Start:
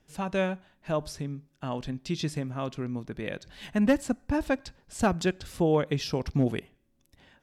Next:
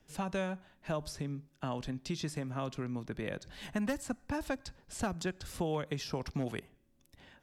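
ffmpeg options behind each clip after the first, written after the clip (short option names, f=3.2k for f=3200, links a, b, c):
-filter_complex "[0:a]acrossover=split=170|750|1800|4400[a][b][c][d][e];[a]acompressor=threshold=-42dB:ratio=4[f];[b]acompressor=threshold=-38dB:ratio=4[g];[c]acompressor=threshold=-40dB:ratio=4[h];[d]acompressor=threshold=-53dB:ratio=4[i];[e]acompressor=threshold=-44dB:ratio=4[j];[f][g][h][i][j]amix=inputs=5:normalize=0"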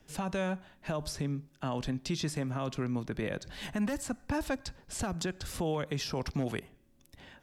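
-af "alimiter=level_in=4.5dB:limit=-24dB:level=0:latency=1:release=35,volume=-4.5dB,volume=5dB"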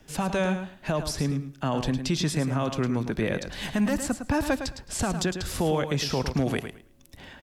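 -af "aecho=1:1:108|216|324:0.355|0.0639|0.0115,volume=7dB"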